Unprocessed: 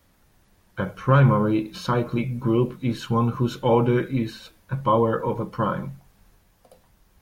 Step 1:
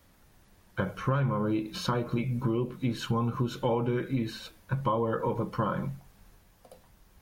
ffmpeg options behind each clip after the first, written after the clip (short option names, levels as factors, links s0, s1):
-af "acompressor=threshold=0.0562:ratio=6"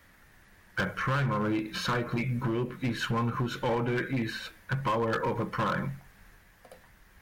-af "equalizer=f=1800:w=1.6:g=12.5,asoftclip=type=hard:threshold=0.0631"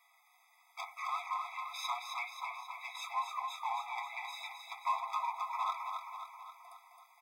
-filter_complex "[0:a]flanger=delay=6.9:depth=3.8:regen=-45:speed=0.51:shape=triangular,asplit=2[s0][s1];[s1]aecho=0:1:266|532|798|1064|1330|1596|1862:0.531|0.297|0.166|0.0932|0.0522|0.0292|0.0164[s2];[s0][s2]amix=inputs=2:normalize=0,afftfilt=real='re*eq(mod(floor(b*sr/1024/660),2),1)':imag='im*eq(mod(floor(b*sr/1024/660),2),1)':win_size=1024:overlap=0.75,volume=1.12"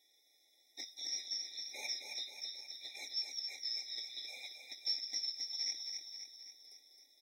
-af "afftfilt=real='real(if(lt(b,272),68*(eq(floor(b/68),0)*3+eq(floor(b/68),1)*2+eq(floor(b/68),2)*1+eq(floor(b/68),3)*0)+mod(b,68),b),0)':imag='imag(if(lt(b,272),68*(eq(floor(b/68),0)*3+eq(floor(b/68),1)*2+eq(floor(b/68),2)*1+eq(floor(b/68),3)*0)+mod(b,68),b),0)':win_size=2048:overlap=0.75,volume=0.668"